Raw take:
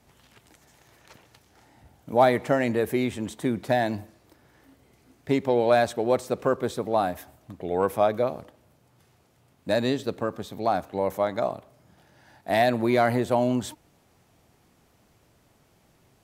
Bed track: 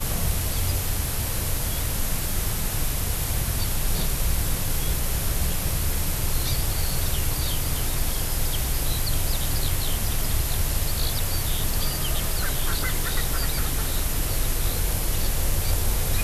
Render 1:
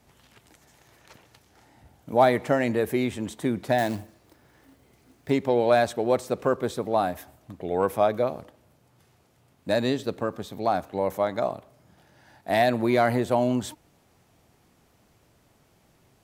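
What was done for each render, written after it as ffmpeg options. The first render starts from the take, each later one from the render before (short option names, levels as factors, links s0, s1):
-filter_complex "[0:a]asettb=1/sr,asplit=3[s0][s1][s2];[s0]atrim=end=3.784[s3];[s1]atrim=start=3.78:end=5.3,asetpts=PTS-STARTPTS,afade=t=in:d=0.004:c=qsin,afade=t=out:st=1.516:d=0.004:c=qsin,acrusher=bits=4:mode=log:mix=0:aa=0.000001[s4];[s2]atrim=start=5.296[s5];[s3][s4]acrossfade=d=0.004:c1=hsin:c2=qsin[s6];[s6][s5]acrossfade=d=0.004:c1=qsin:c2=hsin"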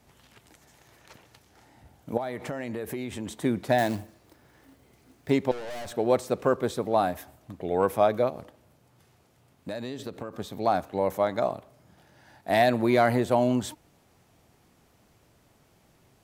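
-filter_complex "[0:a]asettb=1/sr,asplit=3[s0][s1][s2];[s0]atrim=end=2.174[s3];[s1]atrim=start=2.17:end=3.38,asetpts=PTS-STARTPTS,afade=t=in:d=0.004:c=qsin,afade=t=out:st=1.206:d=0.004:c=qsin,acompressor=threshold=0.0355:ratio=8:attack=3.2:release=140:knee=1:detection=peak[s4];[s2]atrim=start=3.376[s5];[s3][s4]acrossfade=d=0.004:c1=hsin:c2=qsin[s6];[s6][s5]acrossfade=d=0.004:c1=qsin:c2=hsin,asettb=1/sr,asplit=3[s7][s8][s9];[s7]atrim=end=5.514[s10];[s8]atrim=start=5.51:end=5.92,asetpts=PTS-STARTPTS,afade=t=in:d=0.004:c=qsin,afade=t=out:st=0.406:d=0.004:c=qsin,aeval=exprs='(tanh(63.1*val(0)+0.55)-tanh(0.55))/63.1':c=same[s11];[s9]atrim=start=5.916[s12];[s10][s11]acrossfade=d=0.004:c1=hsin:c2=qsin[s13];[s13][s12]acrossfade=d=0.004:c1=qsin:c2=hsin,asplit=3[s14][s15][s16];[s14]afade=t=out:st=8.29:d=0.02[s17];[s15]acompressor=threshold=0.0282:ratio=6:attack=3.2:release=140:knee=1:detection=peak,afade=t=in:st=8.29:d=0.02,afade=t=out:st=10.33:d=0.02[s18];[s16]afade=t=in:st=10.33:d=0.02[s19];[s17][s18][s19]amix=inputs=3:normalize=0"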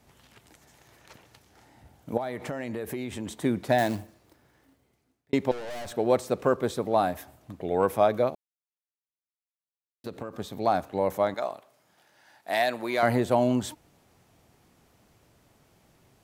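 -filter_complex "[0:a]asettb=1/sr,asplit=3[s0][s1][s2];[s0]atrim=end=11.344[s3];[s1]atrim=start=11.34:end=13.03,asetpts=PTS-STARTPTS,afade=t=in:d=0.004:c=qsin,afade=t=out:st=1.686:d=0.004:c=qsin,highpass=f=880:p=1[s4];[s2]atrim=start=13.026[s5];[s3][s4]acrossfade=d=0.004:c1=hsin:c2=qsin[s6];[s6][s5]acrossfade=d=0.004:c1=qsin:c2=hsin,asplit=4[s7][s8][s9][s10];[s7]atrim=end=5.33,asetpts=PTS-STARTPTS,afade=t=out:st=3.88:d=1.45[s11];[s8]atrim=start=5.33:end=8.35,asetpts=PTS-STARTPTS,afade=t=in:d=0.004:c=hsin,afade=t=out:st=3.016:d=0.004:c=hsin[s12];[s9]atrim=start=8.35:end=10.04,asetpts=PTS-STARTPTS,volume=0[s13];[s10]atrim=start=10.04,asetpts=PTS-STARTPTS,afade=t=in:d=0.004:c=hsin[s14];[s11][s12][s13][s14]concat=n=4:v=0:a=1"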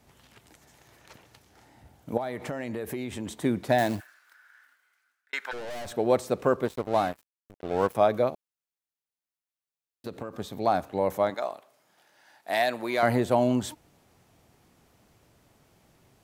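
-filter_complex "[0:a]asplit=3[s0][s1][s2];[s0]afade=t=out:st=3.99:d=0.02[s3];[s1]highpass=f=1500:t=q:w=8.9,afade=t=in:st=3.99:d=0.02,afade=t=out:st=5.52:d=0.02[s4];[s2]afade=t=in:st=5.52:d=0.02[s5];[s3][s4][s5]amix=inputs=3:normalize=0,asettb=1/sr,asplit=3[s6][s7][s8];[s6]atrim=end=6.654[s9];[s7]atrim=start=6.65:end=7.95,asetpts=PTS-STARTPTS,afade=t=in:d=0.004:c=qsin,afade=t=out:st=1.296:d=0.004:c=qsin,aeval=exprs='sgn(val(0))*max(abs(val(0))-0.015,0)':c=same[s10];[s8]atrim=start=7.946[s11];[s9][s10]acrossfade=d=0.004:c1=hsin:c2=qsin[s12];[s12][s11]acrossfade=d=0.004:c1=qsin:c2=hsin,asettb=1/sr,asplit=3[s13][s14][s15];[s13]atrim=end=11.304[s16];[s14]atrim=start=11.3:end=12.5,asetpts=PTS-STARTPTS,afade=t=in:d=0.004:c=qsin,afade=t=out:st=1.196:d=0.004:c=qsin,highpass=f=220:p=1[s17];[s15]atrim=start=12.496[s18];[s16][s17]acrossfade=d=0.004:c1=hsin:c2=qsin[s19];[s19][s18]acrossfade=d=0.004:c1=qsin:c2=hsin"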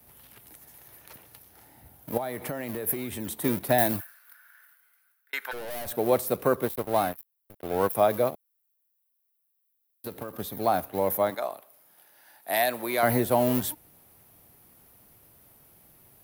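-filter_complex "[0:a]acrossover=split=200|1100[s0][s1][s2];[s0]acrusher=samples=41:mix=1:aa=0.000001:lfo=1:lforange=41:lforate=1.5[s3];[s3][s1][s2]amix=inputs=3:normalize=0,aexciter=amount=10.4:drive=3:freq=9900"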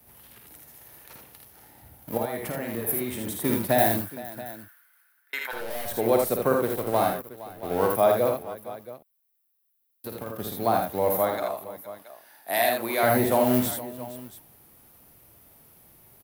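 -af "aecho=1:1:53|80|466|677:0.501|0.596|0.15|0.158"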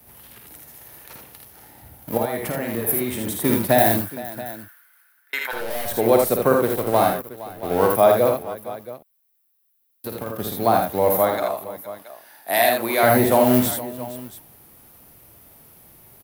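-af "volume=1.88,alimiter=limit=0.794:level=0:latency=1"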